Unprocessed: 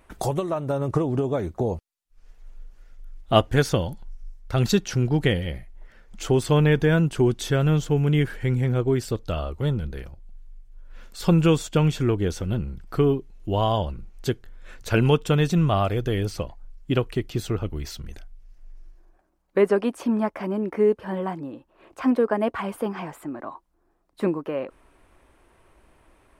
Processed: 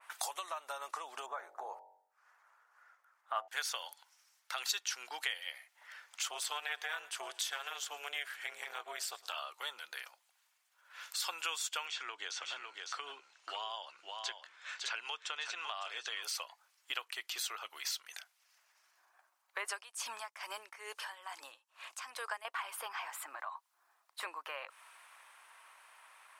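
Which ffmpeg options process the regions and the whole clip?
ffmpeg -i in.wav -filter_complex "[0:a]asettb=1/sr,asplit=3[link_01][link_02][link_03];[link_01]atrim=end=1.264[link_04];[link_02]atrim=start=1.26:end=3.48,asetpts=PTS-STARTPTS,afade=type=in:duration=0.004:curve=qsin,afade=type=out:start_time=2.216:duration=0.004:curve=qsin,highshelf=frequency=2100:width_type=q:width=1.5:gain=-13.5,bandreject=frequency=47.1:width_type=h:width=4,bandreject=frequency=94.2:width_type=h:width=4,bandreject=frequency=141.3:width_type=h:width=4,bandreject=frequency=188.4:width_type=h:width=4,bandreject=frequency=235.5:width_type=h:width=4,bandreject=frequency=282.6:width_type=h:width=4,bandreject=frequency=329.7:width_type=h:width=4,bandreject=frequency=376.8:width_type=h:width=4,bandreject=frequency=423.9:width_type=h:width=4,bandreject=frequency=471:width_type=h:width=4,bandreject=frequency=518.1:width_type=h:width=4,bandreject=frequency=565.2:width_type=h:width=4,bandreject=frequency=612.3:width_type=h:width=4,bandreject=frequency=659.4:width_type=h:width=4,bandreject=frequency=706.5:width_type=h:width=4,bandreject=frequency=753.6:width_type=h:width=4,bandreject=frequency=800.7:width_type=h:width=4,bandreject=frequency=847.8:width_type=h:width=4,bandreject=frequency=894.9:width_type=h:width=4,bandreject=frequency=942:width_type=h:width=4[link_05];[link_03]atrim=start=3.476[link_06];[link_04][link_05]acrossfade=duration=0.004:curve1=hsin:curve2=qsin[link_07];[link_07][link_06]acrossfade=duration=0.004:curve1=qsin:curve2=hsin,asettb=1/sr,asplit=3[link_08][link_09][link_10];[link_08]atrim=end=6.284[link_11];[link_09]atrim=start=6.28:end=9.36,asetpts=PTS-STARTPTS,afade=type=in:duration=0.004:curve=qsin,afade=type=out:start_time=3.076:duration=0.004:curve=qsin,tremolo=f=290:d=0.75,aecho=1:1:111|222|333|444:0.075|0.0427|0.0244|0.0139,atrim=end_sample=135828[link_12];[link_10]atrim=start=9.356[link_13];[link_11][link_12]acrossfade=duration=0.004:curve1=hsin:curve2=qsin[link_14];[link_14][link_13]acrossfade=duration=0.004:curve1=qsin:curve2=hsin,asettb=1/sr,asplit=3[link_15][link_16][link_17];[link_15]atrim=end=11.864[link_18];[link_16]atrim=start=11.86:end=16.23,asetpts=PTS-STARTPTS,afade=type=in:duration=0.004:curve=qsin,afade=type=out:start_time=4.366:duration=0.004:curve=qsin,lowpass=frequency=7400:width=0.5412,lowpass=frequency=7400:width=1.3066,acrossover=split=380|4100[link_19][link_20][link_21];[link_19]acompressor=threshold=-22dB:ratio=4[link_22];[link_20]acompressor=threshold=-31dB:ratio=4[link_23];[link_21]acompressor=threshold=-51dB:ratio=4[link_24];[link_22][link_23][link_24]amix=inputs=3:normalize=0,aecho=1:1:555:0.376,atrim=end_sample=192717[link_25];[link_17]atrim=start=16.226[link_26];[link_18][link_25]acrossfade=duration=0.004:curve1=hsin:curve2=qsin[link_27];[link_27][link_26]acrossfade=duration=0.004:curve1=qsin:curve2=hsin,asettb=1/sr,asplit=3[link_28][link_29][link_30];[link_28]atrim=end=19.684[link_31];[link_29]atrim=start=19.68:end=22.45,asetpts=PTS-STARTPTS,afade=type=in:duration=0.004:curve=qsin,afade=type=out:start_time=2.766:duration=0.004:curve=qsin,equalizer=frequency=7400:width_type=o:width=2.1:gain=12.5,aeval=exprs='val(0)*pow(10,-19*(0.5-0.5*cos(2*PI*2.3*n/s))/20)':channel_layout=same[link_32];[link_30]atrim=start=22.446[link_33];[link_31][link_32]acrossfade=duration=0.004:curve1=hsin:curve2=qsin[link_34];[link_34][link_33]acrossfade=duration=0.004:curve1=qsin:curve2=hsin,highpass=frequency=930:width=0.5412,highpass=frequency=930:width=1.3066,acompressor=threshold=-49dB:ratio=2.5,adynamicequalizer=threshold=0.00126:dfrequency=2300:dqfactor=0.7:tfrequency=2300:tqfactor=0.7:attack=5:release=100:ratio=0.375:range=2.5:mode=boostabove:tftype=highshelf,volume=5dB" out.wav

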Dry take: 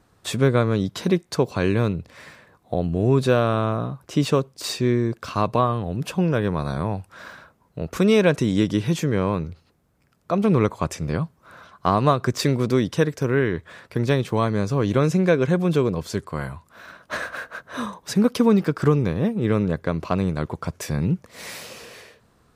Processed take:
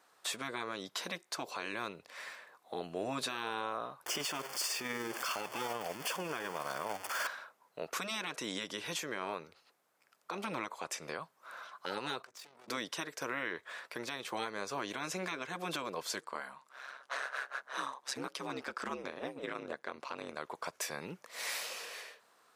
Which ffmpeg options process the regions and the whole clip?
ffmpeg -i in.wav -filter_complex "[0:a]asettb=1/sr,asplit=3[link_01][link_02][link_03];[link_01]atrim=end=4.064[link_04];[link_02]atrim=start=4.06:end=7.27,asetpts=PTS-STARTPTS,afade=type=in:duration=0.004:curve=qsin,afade=type=out:start_time=3.206:duration=0.004:curve=qsin,aeval=exprs='val(0)+0.5*0.0398*sgn(val(0))':channel_layout=same,tremolo=f=20:d=0.31,asuperstop=centerf=3900:order=8:qfactor=6.1[link_05];[link_03]atrim=start=7.266[link_06];[link_04][link_05]acrossfade=duration=0.004:curve1=hsin:curve2=qsin[link_07];[link_07][link_06]acrossfade=duration=0.004:curve1=qsin:curve2=hsin,asettb=1/sr,asplit=3[link_08][link_09][link_10];[link_08]atrim=end=12.224[link_11];[link_09]atrim=start=12.22:end=12.68,asetpts=PTS-STARTPTS,afade=type=in:duration=0.004:curve=qsin,afade=type=out:start_time=0.456:duration=0.004:curve=qsin,aeval=exprs='(tanh(25.1*val(0)+0.6)-tanh(0.6))/25.1':channel_layout=same,acompressor=threshold=-43dB:ratio=6:attack=3.2:release=140:knee=1:detection=peak,tremolo=f=45:d=0.519[link_12];[link_10]atrim=start=12.676[link_13];[link_11][link_12]acrossfade=duration=0.004:curve1=hsin:curve2=qsin[link_14];[link_14][link_13]acrossfade=duration=0.004:curve1=qsin:curve2=hsin,asettb=1/sr,asplit=3[link_15][link_16][link_17];[link_15]atrim=end=16.204[link_18];[link_16]atrim=start=16.2:end=20.37,asetpts=PTS-STARTPTS,afade=type=in:duration=0.004:curve=qsin,afade=type=out:start_time=4.166:duration=0.004:curve=qsin,lowpass=10000,aeval=exprs='val(0)*sin(2*PI*67*n/s)':channel_layout=same[link_19];[link_17]atrim=start=20.366[link_20];[link_18][link_19]acrossfade=duration=0.004:curve1=hsin:curve2=qsin[link_21];[link_21][link_20]acrossfade=duration=0.004:curve1=qsin:curve2=hsin,highpass=680,afftfilt=real='re*lt(hypot(re,im),0.178)':imag='im*lt(hypot(re,im),0.178)':win_size=1024:overlap=0.75,alimiter=limit=-24dB:level=0:latency=1:release=266,volume=-1.5dB" out.wav

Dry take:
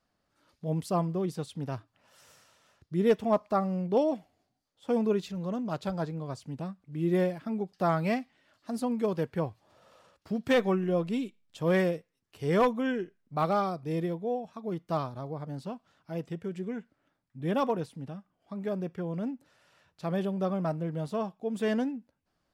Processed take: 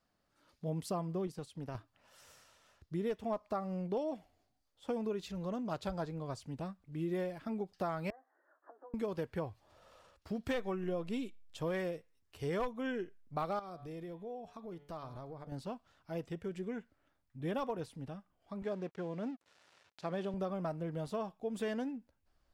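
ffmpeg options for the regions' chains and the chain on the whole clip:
ffmpeg -i in.wav -filter_complex "[0:a]asettb=1/sr,asplit=3[link_01][link_02][link_03];[link_01]atrim=end=1.274[link_04];[link_02]atrim=start=1.27:end=1.75,asetpts=PTS-STARTPTS,afade=type=in:duration=0.004:curve=qsin,afade=type=out:start_time=0.476:duration=0.004:curve=qsin,bandreject=frequency=3600:width=16,agate=range=-7dB:threshold=-39dB:ratio=16:release=100:detection=peak,acompressor=threshold=-36dB:ratio=3:attack=3.2:release=140:knee=1:detection=peak[link_05];[link_03]atrim=start=1.746[link_06];[link_04][link_05]acrossfade=duration=0.004:curve1=hsin:curve2=qsin[link_07];[link_07][link_06]acrossfade=duration=0.004:curve1=qsin:curve2=hsin,asettb=1/sr,asplit=3[link_08][link_09][link_10];[link_08]atrim=end=8.104[link_11];[link_09]atrim=start=8.1:end=8.94,asetpts=PTS-STARTPTS,afade=type=in:duration=0.004:curve=qsin,afade=type=out:start_time=0.836:duration=0.004:curve=qsin,acompressor=threshold=-43dB:ratio=12:attack=3.2:release=140:knee=1:detection=peak,asuperpass=centerf=730:order=20:qfactor=0.51,asplit=2[link_12][link_13];[link_13]adelay=14,volume=-10.5dB[link_14];[link_12][link_14]amix=inputs=2:normalize=0,atrim=end_sample=37044[link_15];[link_10]atrim=start=8.936[link_16];[link_11][link_15]acrossfade=duration=0.004:curve1=hsin:curve2=qsin[link_17];[link_17][link_16]acrossfade=duration=0.004:curve1=qsin:curve2=hsin,asettb=1/sr,asplit=3[link_18][link_19][link_20];[link_18]atrim=end=13.594[link_21];[link_19]atrim=start=13.59:end=15.52,asetpts=PTS-STARTPTS,afade=type=in:duration=0.004:curve=qsin,afade=type=out:start_time=1.926:duration=0.004:curve=qsin,bandreject=frequency=144.1:width_type=h:width=4,bandreject=frequency=288.2:width_type=h:width=4,bandreject=frequency=432.3:width_type=h:width=4,bandreject=frequency=576.4:width_type=h:width=4,bandreject=frequency=720.5:width_type=h:width=4,bandreject=frequency=864.6:width_type=h:width=4,bandreject=frequency=1008.7:width_type=h:width=4,bandreject=frequency=1152.8:width_type=h:width=4,bandreject=frequency=1296.9:width_type=h:width=4,bandreject=frequency=1441:width_type=h:width=4,bandreject=frequency=1585.1:width_type=h:width=4,bandreject=frequency=1729.2:width_type=h:width=4,bandreject=frequency=1873.3:width_type=h:width=4,bandreject=frequency=2017.4:width_type=h:width=4,bandreject=frequency=2161.5:width_type=h:width=4,bandreject=frequency=2305.6:width_type=h:width=4,bandreject=frequency=2449.7:width_type=h:width=4,bandreject=frequency=2593.8:width_type=h:width=4,bandreject=frequency=2737.9:width_type=h:width=4,bandreject=frequency=2882:width_type=h:width=4,bandreject=frequency=3026.1:width_type=h:width=4,bandreject=frequency=3170.2:width_type=h:width=4,bandreject=frequency=3314.3:width_type=h:width=4,bandreject=frequency=3458.4:width_type=h:width=4,bandreject=frequency=3602.5:width_type=h:width=4,bandreject=frequency=3746.6:width_type=h:width=4,bandreject=frequency=3890.7:width_type=h:width=4,bandreject=frequency=4034.8:width_type=h:width=4,bandreject=frequency=4178.9:width_type=h:width=4,bandreject=frequency=4323:width_type=h:width=4,acompressor=threshold=-41dB:ratio=3:attack=3.2:release=140:knee=1:detection=peak[link_22];[link_20]atrim=start=15.516[link_23];[link_21][link_22]acrossfade=duration=0.004:curve1=hsin:curve2=qsin[link_24];[link_24][link_23]acrossfade=duration=0.004:curve1=qsin:curve2=hsin,asettb=1/sr,asplit=3[link_25][link_26][link_27];[link_25]atrim=end=18.624[link_28];[link_26]atrim=start=18.62:end=20.34,asetpts=PTS-STARTPTS,afade=type=in:duration=0.004:curve=qsin,afade=type=out:start_time=1.716:duration=0.004:curve=qsin,acompressor=mode=upward:threshold=-43dB:ratio=2.5:attack=3.2:release=140:knee=2.83:detection=peak,aeval=exprs='sgn(val(0))*max(abs(val(0))-0.002,0)':channel_layout=same,highpass=150,lowpass=7700[link_29];[link_27]atrim=start=20.336[link_30];[link_28][link_29]acrossfade=duration=0.004:curve1=hsin:curve2=qsin[link_31];[link_31][link_30]acrossfade=duration=0.004:curve1=qsin:curve2=hsin,asubboost=boost=7:cutoff=57,acompressor=threshold=-31dB:ratio=6,volume=-2dB" out.wav

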